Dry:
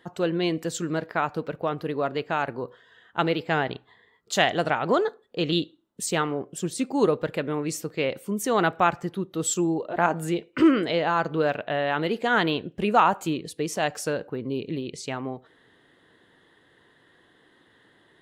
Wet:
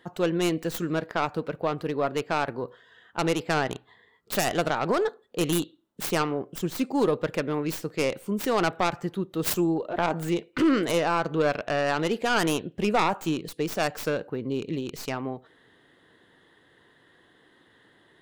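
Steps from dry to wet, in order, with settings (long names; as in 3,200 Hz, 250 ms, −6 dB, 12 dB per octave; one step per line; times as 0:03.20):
stylus tracing distortion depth 0.34 ms
brickwall limiter −14 dBFS, peak gain reduction 7.5 dB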